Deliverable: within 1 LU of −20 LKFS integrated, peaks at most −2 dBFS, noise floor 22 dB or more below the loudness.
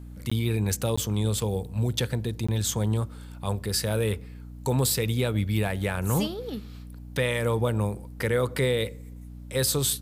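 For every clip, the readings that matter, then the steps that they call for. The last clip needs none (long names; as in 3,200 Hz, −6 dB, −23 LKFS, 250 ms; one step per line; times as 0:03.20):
number of dropouts 3; longest dropout 15 ms; mains hum 60 Hz; hum harmonics up to 300 Hz; level of the hum −40 dBFS; integrated loudness −27.5 LKFS; sample peak −12.5 dBFS; target loudness −20.0 LKFS
→ repair the gap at 0:00.30/0:00.96/0:02.47, 15 ms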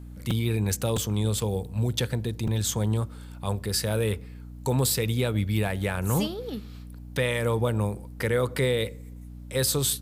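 number of dropouts 0; mains hum 60 Hz; hum harmonics up to 300 Hz; level of the hum −40 dBFS
→ hum removal 60 Hz, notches 5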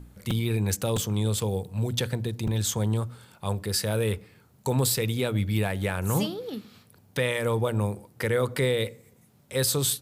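mains hum none found; integrated loudness −27.5 LKFS; sample peak −13.0 dBFS; target loudness −20.0 LKFS
→ level +7.5 dB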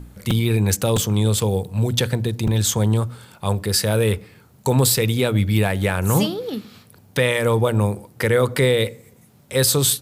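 integrated loudness −20.0 LKFS; sample peak −5.5 dBFS; background noise floor −52 dBFS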